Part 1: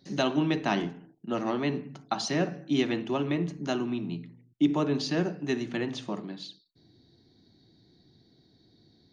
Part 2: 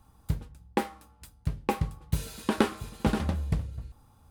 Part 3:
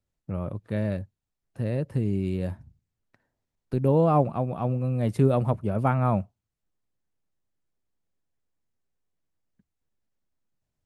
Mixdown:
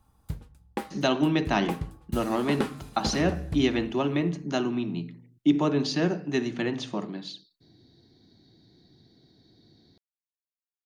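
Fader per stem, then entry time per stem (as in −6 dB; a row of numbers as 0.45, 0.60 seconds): +2.5 dB, −5.0 dB, muted; 0.85 s, 0.00 s, muted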